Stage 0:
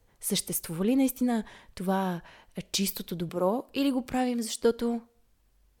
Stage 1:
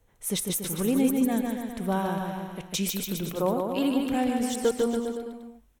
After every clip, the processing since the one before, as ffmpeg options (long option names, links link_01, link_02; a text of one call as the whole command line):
ffmpeg -i in.wav -filter_complex "[0:a]equalizer=frequency=4700:width_type=o:width=0.22:gain=-11.5,asplit=2[link_01][link_02];[link_02]aecho=0:1:150|285|406.5|515.8|614.3:0.631|0.398|0.251|0.158|0.1[link_03];[link_01][link_03]amix=inputs=2:normalize=0" out.wav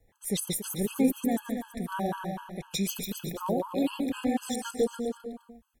ffmpeg -i in.wav -af "afftfilt=real='re*gt(sin(2*PI*4*pts/sr)*(1-2*mod(floor(b*sr/1024/840),2)),0)':imag='im*gt(sin(2*PI*4*pts/sr)*(1-2*mod(floor(b*sr/1024/840),2)),0)':win_size=1024:overlap=0.75" out.wav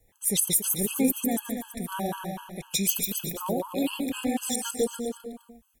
ffmpeg -i in.wav -af "aexciter=amount=2.4:drive=2.3:freq=2400" out.wav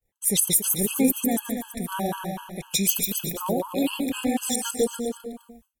ffmpeg -i in.wav -af "agate=range=-33dB:threshold=-52dB:ratio=3:detection=peak,volume=3dB" out.wav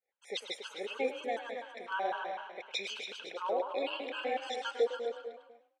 ffmpeg -i in.wav -filter_complex "[0:a]highpass=frequency=420:width=0.5412,highpass=frequency=420:width=1.3066,equalizer=frequency=510:width_type=q:width=4:gain=5,equalizer=frequency=800:width_type=q:width=4:gain=5,equalizer=frequency=1500:width_type=q:width=4:gain=8,equalizer=frequency=2200:width_type=q:width=4:gain=5,lowpass=frequency=4200:width=0.5412,lowpass=frequency=4200:width=1.3066,asplit=4[link_01][link_02][link_03][link_04];[link_02]adelay=104,afreqshift=33,volume=-13dB[link_05];[link_03]adelay=208,afreqshift=66,volume=-22.9dB[link_06];[link_04]adelay=312,afreqshift=99,volume=-32.8dB[link_07];[link_01][link_05][link_06][link_07]amix=inputs=4:normalize=0,volume=-7.5dB" out.wav